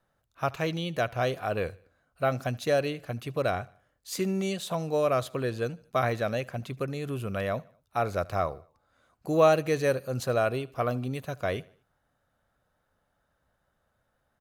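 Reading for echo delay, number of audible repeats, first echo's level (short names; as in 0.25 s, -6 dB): 76 ms, 2, -23.5 dB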